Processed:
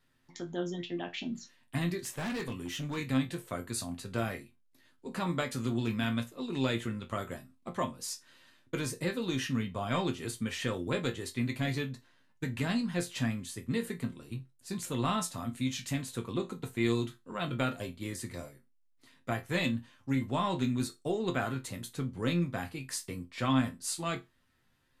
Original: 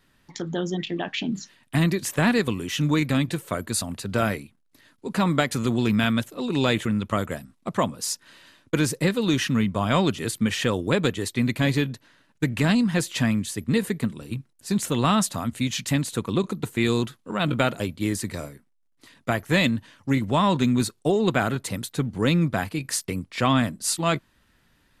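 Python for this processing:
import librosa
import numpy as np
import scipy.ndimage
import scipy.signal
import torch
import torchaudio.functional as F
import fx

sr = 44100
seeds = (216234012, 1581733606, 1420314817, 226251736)

y = fx.resonator_bank(x, sr, root=41, chord='sus4', decay_s=0.2)
y = fx.clip_hard(y, sr, threshold_db=-32.5, at=(1.99, 2.96), fade=0.02)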